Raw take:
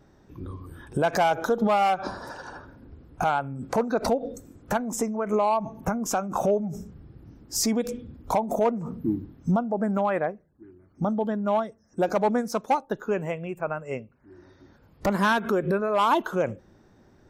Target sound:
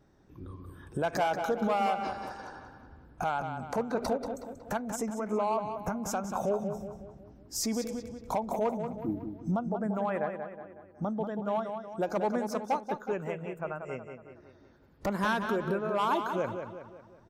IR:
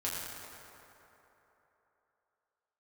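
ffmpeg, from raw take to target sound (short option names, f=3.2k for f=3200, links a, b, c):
-filter_complex "[0:a]asplit=2[a][b];[b]adelay=184,lowpass=f=4.8k:p=1,volume=-7dB,asplit=2[c][d];[d]adelay=184,lowpass=f=4.8k:p=1,volume=0.48,asplit=2[e][f];[f]adelay=184,lowpass=f=4.8k:p=1,volume=0.48,asplit=2[g][h];[h]adelay=184,lowpass=f=4.8k:p=1,volume=0.48,asplit=2[i][j];[j]adelay=184,lowpass=f=4.8k:p=1,volume=0.48,asplit=2[k][l];[l]adelay=184,lowpass=f=4.8k:p=1,volume=0.48[m];[a][c][e][g][i][k][m]amix=inputs=7:normalize=0,volume=-7dB"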